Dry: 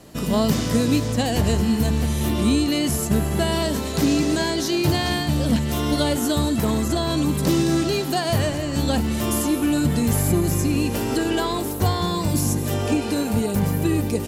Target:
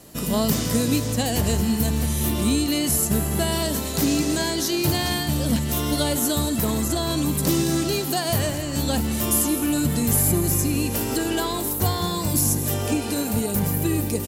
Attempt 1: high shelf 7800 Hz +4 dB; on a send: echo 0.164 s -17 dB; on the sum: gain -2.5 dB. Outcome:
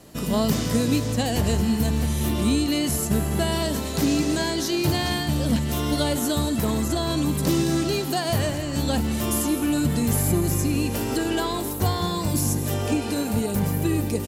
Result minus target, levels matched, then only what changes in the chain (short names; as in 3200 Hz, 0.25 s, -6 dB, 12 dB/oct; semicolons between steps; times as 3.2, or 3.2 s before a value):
8000 Hz band -4.0 dB
change: high shelf 7800 Hz +13.5 dB